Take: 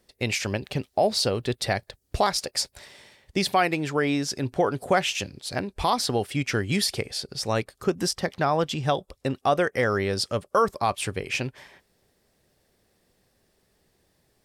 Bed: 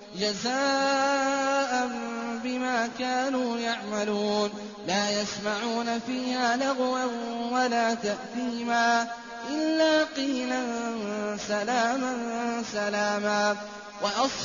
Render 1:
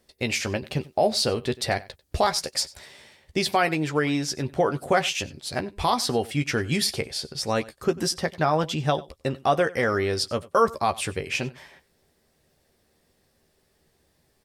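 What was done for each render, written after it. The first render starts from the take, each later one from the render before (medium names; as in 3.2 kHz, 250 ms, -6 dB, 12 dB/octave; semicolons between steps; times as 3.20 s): doubling 13 ms -8 dB; delay 94 ms -21 dB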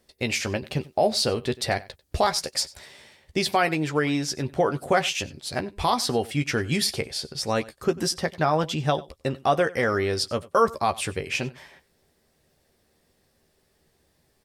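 no audible change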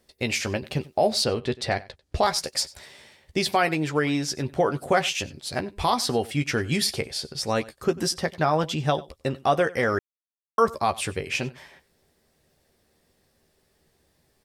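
1.24–2.23 s: distance through air 59 m; 9.99–10.58 s: mute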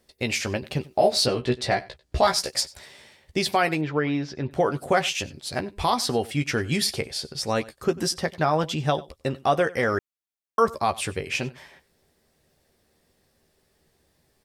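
0.89–2.61 s: doubling 16 ms -3 dB; 3.81–4.51 s: distance through air 250 m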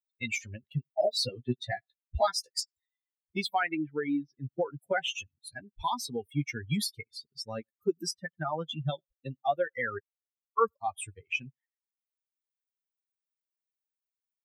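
expander on every frequency bin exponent 3; three bands compressed up and down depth 40%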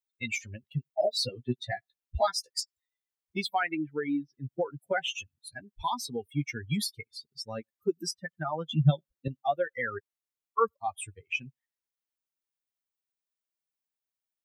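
8.69–9.28 s: peaking EQ 180 Hz +13 dB 1.8 oct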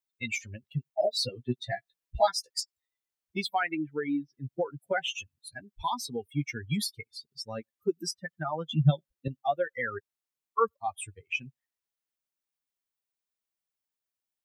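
1.66–2.29 s: comb 6.1 ms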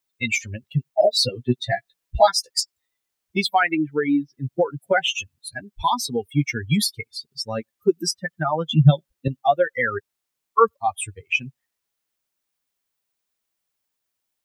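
trim +10 dB; peak limiter -3 dBFS, peak gain reduction 2 dB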